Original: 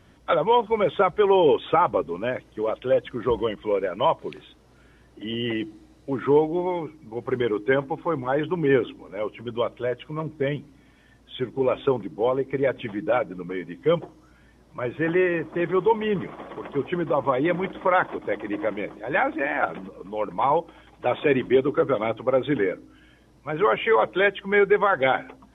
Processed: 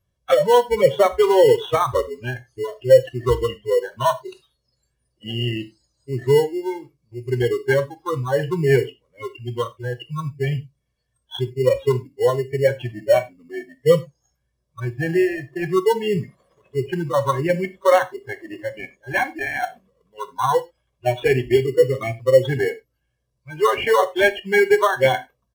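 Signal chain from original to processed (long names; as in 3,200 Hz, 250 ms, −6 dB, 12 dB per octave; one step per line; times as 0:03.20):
bass and treble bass +6 dB, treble +11 dB
comb filter 1.8 ms, depth 76%
dynamic equaliser 630 Hz, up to +3 dB, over −32 dBFS, Q 2
noise reduction from a noise print of the clip's start 27 dB
in parallel at −10.5 dB: decimation without filtering 18×
on the sum: reverb whose tail is shaped and stops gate 120 ms falling, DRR 10.5 dB
level −1 dB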